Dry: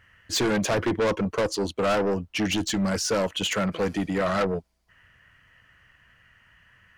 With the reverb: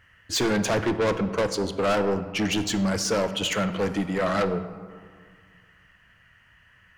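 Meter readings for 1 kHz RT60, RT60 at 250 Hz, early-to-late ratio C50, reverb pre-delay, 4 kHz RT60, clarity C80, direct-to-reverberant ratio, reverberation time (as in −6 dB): 2.1 s, 2.1 s, 11.5 dB, 20 ms, 0.90 s, 13.0 dB, 10.0 dB, 1.9 s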